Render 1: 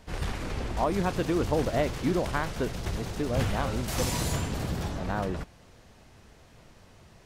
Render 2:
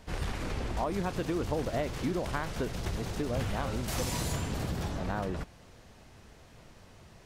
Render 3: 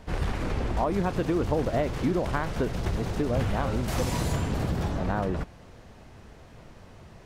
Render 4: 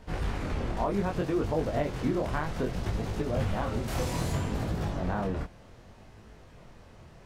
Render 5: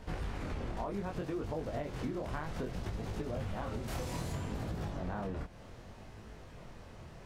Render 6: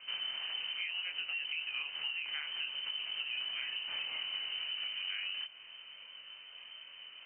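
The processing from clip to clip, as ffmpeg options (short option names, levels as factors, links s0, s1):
-af "acompressor=threshold=0.0316:ratio=2.5"
-af "highshelf=f=2600:g=-8,volume=2"
-af "flanger=delay=18.5:depth=7.8:speed=0.64"
-af "acompressor=threshold=0.0141:ratio=4,volume=1.12"
-af "lowpass=f=2600:t=q:w=0.5098,lowpass=f=2600:t=q:w=0.6013,lowpass=f=2600:t=q:w=0.9,lowpass=f=2600:t=q:w=2.563,afreqshift=-3100,volume=0.841"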